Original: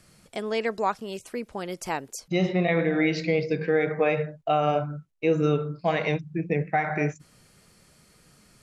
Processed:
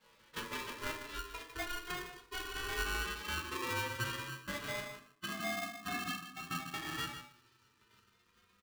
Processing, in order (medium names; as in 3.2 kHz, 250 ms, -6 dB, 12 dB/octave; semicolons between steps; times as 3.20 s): vocoder on a note that slides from D#4, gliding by +11 st; dynamic bell 720 Hz, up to +5 dB, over -42 dBFS, Q 2.9; spectral gate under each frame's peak -15 dB weak; compression 5:1, threshold -50 dBFS, peak gain reduction 15 dB; distance through air 300 m; echo from a far wall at 26 m, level -10 dB; simulated room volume 350 m³, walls furnished, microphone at 2.4 m; polarity switched at an audio rate 720 Hz; trim +11.5 dB